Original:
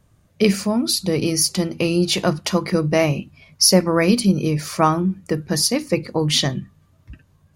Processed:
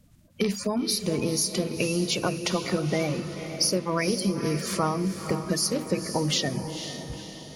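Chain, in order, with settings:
spectral magnitudes quantised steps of 30 dB
downward compressor 4 to 1, threshold −24 dBFS, peak gain reduction 13 dB
on a send: feedback delay with all-pass diffusion 494 ms, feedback 50%, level −9 dB

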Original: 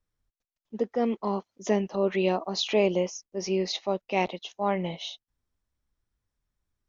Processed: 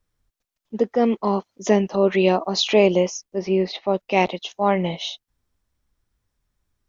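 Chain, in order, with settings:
0:03.39–0:03.94: high-frequency loss of the air 280 metres
level +7.5 dB

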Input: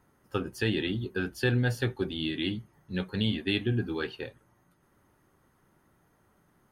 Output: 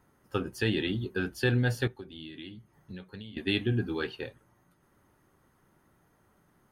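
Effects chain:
0:01.87–0:03.37: downward compressor 16 to 1, threshold −40 dBFS, peak gain reduction 18.5 dB

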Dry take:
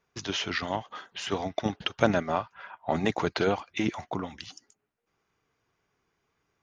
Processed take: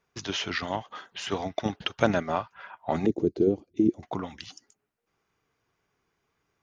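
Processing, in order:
0:03.06–0:04.03: drawn EQ curve 160 Hz 0 dB, 360 Hz +9 dB, 960 Hz −27 dB, 1,700 Hz −29 dB, 6,700 Hz −15 dB

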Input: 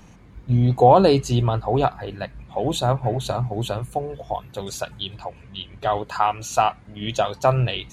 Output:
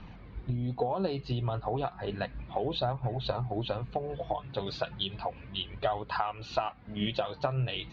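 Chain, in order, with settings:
Butterworth low-pass 4,600 Hz 48 dB per octave
downward compressor 16 to 1, threshold −27 dBFS, peak gain reduction 19.5 dB
flanger 0.33 Hz, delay 0.7 ms, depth 6.7 ms, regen +58%
level +4 dB

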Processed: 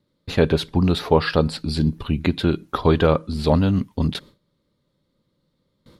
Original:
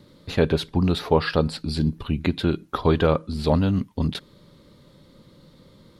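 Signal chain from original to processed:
noise gate with hold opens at −40 dBFS
level +2.5 dB

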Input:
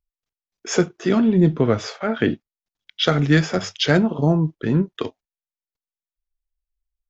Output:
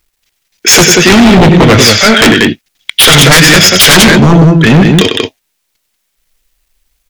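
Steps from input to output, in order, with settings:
high shelf with overshoot 1,500 Hz +10 dB, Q 1.5
on a send: loudspeakers that aren't time-aligned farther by 34 metres −10 dB, 64 metres −7 dB
on the sum: sine wavefolder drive 17 dB, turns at 4 dBFS
bit-depth reduction 10 bits, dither none
level −1 dB

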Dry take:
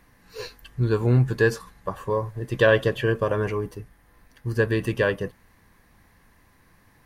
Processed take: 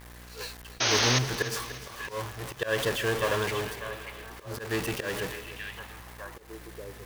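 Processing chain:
converter with a step at zero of −24 dBFS
downward expander −20 dBFS
hum with harmonics 60 Hz, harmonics 38, −39 dBFS −8 dB per octave
in parallel at −6 dB: soft clipping −27.5 dBFS, distortion −4 dB
on the sum: echo through a band-pass that steps 594 ms, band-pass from 2,600 Hz, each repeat −1.4 octaves, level −6.5 dB
volume swells 165 ms
low-shelf EQ 490 Hz −10.5 dB
sound drawn into the spectrogram noise, 0:00.80–0:01.19, 220–6,600 Hz −22 dBFS
feedback echo at a low word length 296 ms, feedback 55%, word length 7 bits, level −13.5 dB
level −3 dB

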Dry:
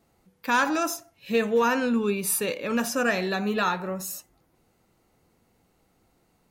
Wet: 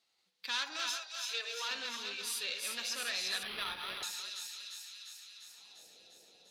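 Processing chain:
feedback delay that plays each chunk backwards 179 ms, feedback 53%, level −5.5 dB
0:00.96–0:01.71: Chebyshev high-pass filter 360 Hz, order 8
transient designer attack +2 dB, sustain −4 dB
soft clipping −22.5 dBFS, distortion −11 dB
band-pass filter sweep 4,000 Hz → 530 Hz, 0:05.21–0:05.88
on a send: delay with a high-pass on its return 349 ms, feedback 69%, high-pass 3,200 Hz, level −4.5 dB
0:03.43–0:04.03: on the sum: linearly interpolated sample-rate reduction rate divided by 6×
level +4 dB

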